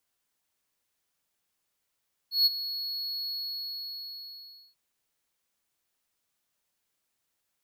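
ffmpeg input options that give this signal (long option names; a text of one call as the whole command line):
ffmpeg -f lavfi -i "aevalsrc='0.168*(1-4*abs(mod(4350*t+0.25,1)-0.5))':duration=2.44:sample_rate=44100,afade=type=in:duration=0.15,afade=type=out:start_time=0.15:duration=0.025:silence=0.2,afade=type=out:start_time=0.98:duration=1.46" out.wav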